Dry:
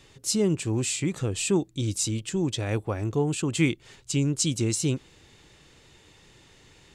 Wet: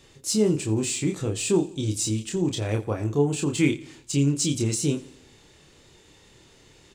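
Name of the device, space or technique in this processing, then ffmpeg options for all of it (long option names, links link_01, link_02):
exciter from parts: -filter_complex "[0:a]equalizer=frequency=370:width_type=o:width=1.8:gain=3.5,asplit=2[link_01][link_02];[link_02]adelay=28,volume=-4dB[link_03];[link_01][link_03]amix=inputs=2:normalize=0,asplit=2[link_04][link_05];[link_05]highpass=3100,asoftclip=type=tanh:threshold=-32dB,volume=-8dB[link_06];[link_04][link_06]amix=inputs=2:normalize=0,aecho=1:1:86|172|258|344:0.106|0.053|0.0265|0.0132,volume=-2dB"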